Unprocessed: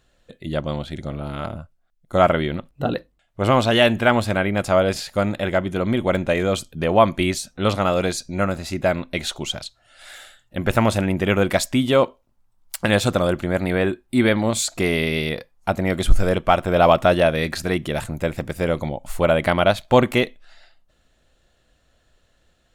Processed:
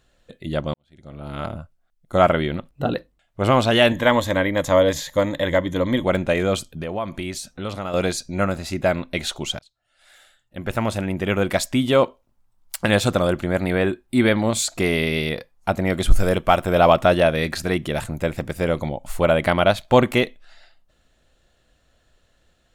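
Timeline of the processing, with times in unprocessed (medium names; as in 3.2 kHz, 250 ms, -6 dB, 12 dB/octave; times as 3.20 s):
0.74–1.40 s: fade in quadratic
3.91–6.04 s: rippled EQ curve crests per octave 1.1, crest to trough 11 dB
6.66–7.94 s: compression 2.5:1, threshold -28 dBFS
9.59–12.00 s: fade in, from -23.5 dB
16.11–16.80 s: treble shelf 9.3 kHz +10 dB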